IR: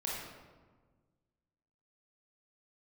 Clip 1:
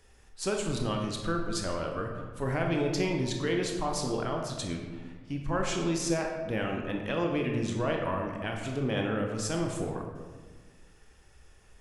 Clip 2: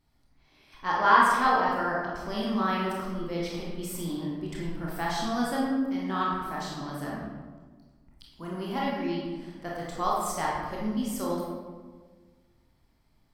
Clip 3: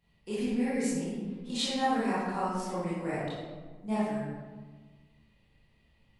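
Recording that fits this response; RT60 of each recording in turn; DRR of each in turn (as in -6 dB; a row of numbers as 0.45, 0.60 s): 2; 1.5, 1.4, 1.4 s; 1.0, -5.0, -11.0 dB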